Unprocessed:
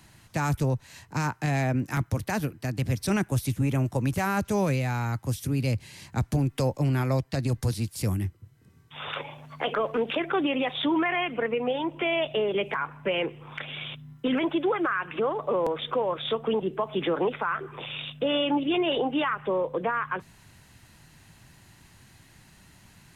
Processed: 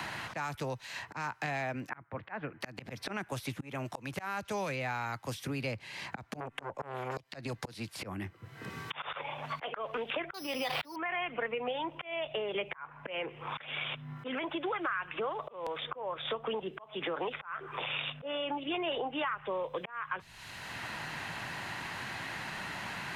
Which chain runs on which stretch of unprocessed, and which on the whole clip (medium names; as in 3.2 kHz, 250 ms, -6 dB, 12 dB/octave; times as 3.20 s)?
1.89–2.61 s: low-pass 2 kHz 24 dB/octave + bass shelf 64 Hz -3 dB
6.40–7.17 s: low-pass 9.2 kHz + peaking EQ 4.6 kHz -14.5 dB 0.85 oct + transformer saturation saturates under 680 Hz
10.34–10.96 s: careless resampling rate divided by 8×, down filtered, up zero stuff + resonant high shelf 4.9 kHz -7 dB, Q 3 + swell ahead of each attack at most 24 dB/s
whole clip: three-band isolator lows -12 dB, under 540 Hz, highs -13 dB, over 4.5 kHz; slow attack 638 ms; three bands compressed up and down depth 100%